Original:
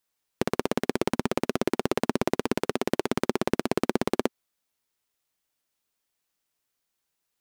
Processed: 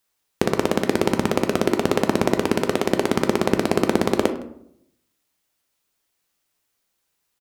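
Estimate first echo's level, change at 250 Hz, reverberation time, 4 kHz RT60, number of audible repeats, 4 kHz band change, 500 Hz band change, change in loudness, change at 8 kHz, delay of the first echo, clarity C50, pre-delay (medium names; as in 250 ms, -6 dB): -21.5 dB, +6.5 dB, 0.75 s, 0.40 s, 1, +6.5 dB, +7.0 dB, +6.5 dB, +6.5 dB, 162 ms, 11.0 dB, 9 ms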